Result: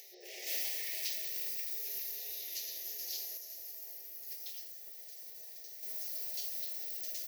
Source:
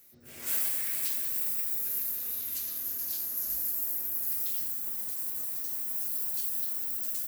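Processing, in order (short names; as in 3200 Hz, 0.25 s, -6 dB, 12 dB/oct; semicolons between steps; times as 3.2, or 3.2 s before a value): brick-wall FIR high-pass 350 Hz; upward compressor, threshold -38 dBFS; Chebyshev band-stop 790–1800 Hz, order 4; resonant high shelf 6900 Hz -6.5 dB, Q 3; 3.37–5.83 gate -37 dBFS, range -7 dB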